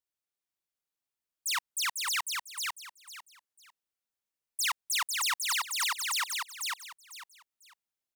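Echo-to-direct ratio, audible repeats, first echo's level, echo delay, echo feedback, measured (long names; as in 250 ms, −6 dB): −3.0 dB, 3, −3.5 dB, 499 ms, 24%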